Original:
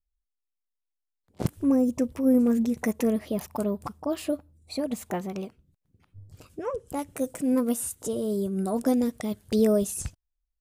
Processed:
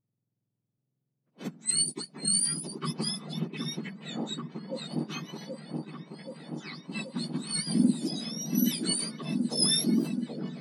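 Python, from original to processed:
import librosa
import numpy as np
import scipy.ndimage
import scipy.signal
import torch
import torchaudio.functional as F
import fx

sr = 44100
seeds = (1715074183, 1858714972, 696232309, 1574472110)

y = fx.octave_mirror(x, sr, pivot_hz=1500.0)
y = fx.echo_opening(y, sr, ms=778, hz=750, octaves=1, feedback_pct=70, wet_db=-3)
y = fx.env_lowpass(y, sr, base_hz=1400.0, full_db=-21.5)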